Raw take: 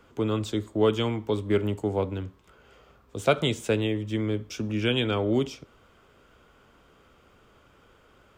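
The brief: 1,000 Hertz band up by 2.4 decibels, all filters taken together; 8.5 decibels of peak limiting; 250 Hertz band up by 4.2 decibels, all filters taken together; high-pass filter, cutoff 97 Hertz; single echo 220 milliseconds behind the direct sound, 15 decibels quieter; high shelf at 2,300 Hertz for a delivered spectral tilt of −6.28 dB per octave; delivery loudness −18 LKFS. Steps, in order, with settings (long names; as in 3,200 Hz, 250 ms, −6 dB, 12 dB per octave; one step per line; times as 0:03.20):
high-pass filter 97 Hz
parametric band 250 Hz +5.5 dB
parametric band 1,000 Hz +4.5 dB
high-shelf EQ 2,300 Hz −7 dB
brickwall limiter −16 dBFS
single-tap delay 220 ms −15 dB
level +9 dB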